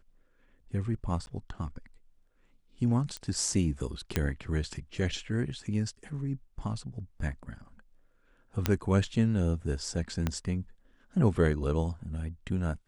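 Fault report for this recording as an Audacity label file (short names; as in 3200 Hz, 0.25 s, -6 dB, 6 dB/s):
1.260000	1.270000	gap 11 ms
3.170000	3.170000	pop -22 dBFS
4.160000	4.160000	pop -12 dBFS
8.660000	8.660000	pop -10 dBFS
10.270000	10.270000	pop -15 dBFS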